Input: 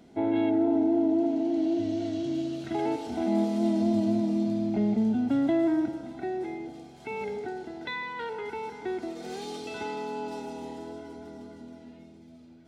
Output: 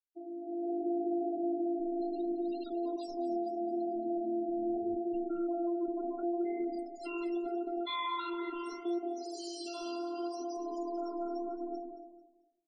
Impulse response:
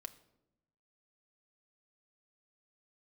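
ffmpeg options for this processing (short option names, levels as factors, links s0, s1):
-af "afftfilt=real='hypot(re,im)*cos(PI*b)':imag='0':win_size=512:overlap=0.75,aemphasis=mode=production:type=75fm,agate=range=0.0224:threshold=0.00447:ratio=3:detection=peak,equalizer=f=2100:w=5.7:g=-10.5,areverse,acompressor=threshold=0.0158:ratio=16,areverse,alimiter=level_in=5.62:limit=0.0631:level=0:latency=1:release=244,volume=0.178,dynaudnorm=f=110:g=11:m=3.76,afftfilt=real='re*gte(hypot(re,im),0.0141)':imag='im*gte(hypot(re,im),0.0141)':win_size=1024:overlap=0.75,flanger=delay=3.5:depth=9.3:regen=-62:speed=0.75:shape=triangular,aecho=1:1:222|444|666:0.2|0.0619|0.0192,volume=2.11"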